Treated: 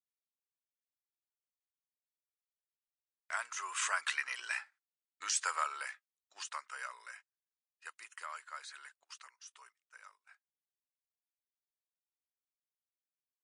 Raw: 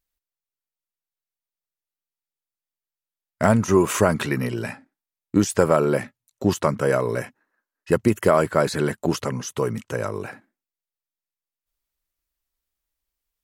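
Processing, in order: Doppler pass-by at 4.79, 11 m/s, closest 5.5 m; HPF 1200 Hz 24 dB/oct; gate -60 dBFS, range -23 dB; MP3 56 kbps 22050 Hz

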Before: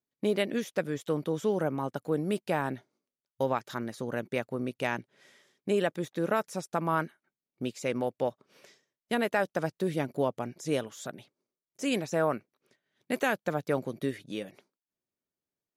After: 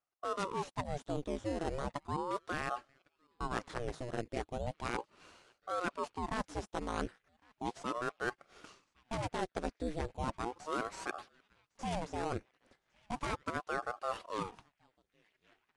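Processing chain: tracing distortion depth 0.19 ms; in parallel at -3 dB: decimation with a swept rate 15×, swing 60% 0.78 Hz; on the sum: downsampling 22050 Hz; reverse; compressor 6:1, threshold -32 dBFS, peak gain reduction 13.5 dB; reverse; narrowing echo 1.106 s, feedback 65%, band-pass 2200 Hz, level -23.5 dB; ring modulator with a swept carrier 540 Hz, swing 80%, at 0.36 Hz; gain +1 dB

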